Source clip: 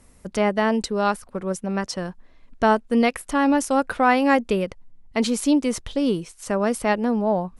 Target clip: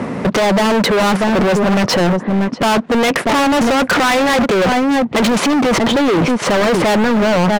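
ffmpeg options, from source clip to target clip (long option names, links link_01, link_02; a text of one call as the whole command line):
ffmpeg -i in.wav -filter_complex "[0:a]tiltshelf=frequency=1400:gain=4,aecho=1:1:638:0.075,apsyclip=30.5dB,lowpass=2700,asplit=2[link_01][link_02];[link_02]acompressor=threshold=-16dB:ratio=6,volume=-1.5dB[link_03];[link_01][link_03]amix=inputs=2:normalize=0,highpass=frequency=140:width=0.5412,highpass=frequency=140:width=1.3066,asoftclip=type=hard:threshold=-12dB" out.wav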